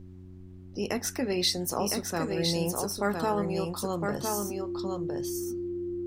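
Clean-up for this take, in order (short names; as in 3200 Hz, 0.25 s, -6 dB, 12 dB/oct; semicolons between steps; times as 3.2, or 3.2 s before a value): de-hum 91.9 Hz, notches 4; notch 350 Hz, Q 30; expander -38 dBFS, range -21 dB; inverse comb 1.01 s -4 dB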